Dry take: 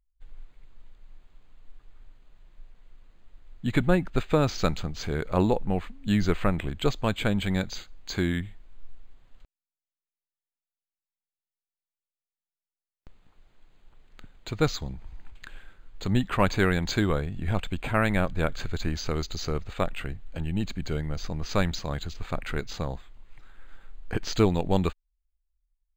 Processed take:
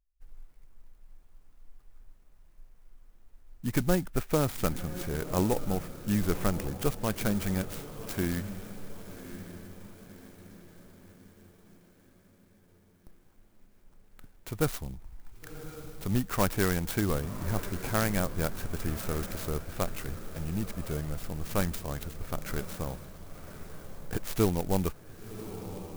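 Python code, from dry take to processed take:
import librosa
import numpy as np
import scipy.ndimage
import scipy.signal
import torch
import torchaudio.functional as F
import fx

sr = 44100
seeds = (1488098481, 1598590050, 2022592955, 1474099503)

y = fx.echo_diffused(x, sr, ms=1103, feedback_pct=48, wet_db=-12.0)
y = fx.clock_jitter(y, sr, seeds[0], jitter_ms=0.074)
y = F.gain(torch.from_numpy(y), -4.0).numpy()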